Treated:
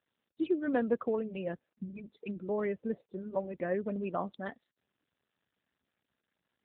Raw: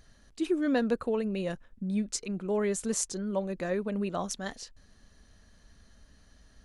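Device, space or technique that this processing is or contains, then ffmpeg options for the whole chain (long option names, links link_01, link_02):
mobile call with aggressive noise cancelling: -af "highpass=frequency=170:poles=1,afftdn=noise_reduction=32:noise_floor=-42" -ar 8000 -c:a libopencore_amrnb -b:a 7950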